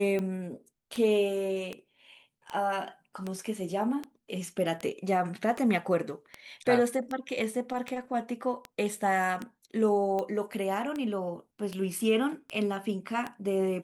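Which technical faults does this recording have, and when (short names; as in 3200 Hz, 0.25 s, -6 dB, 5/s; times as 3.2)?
tick 78 rpm -21 dBFS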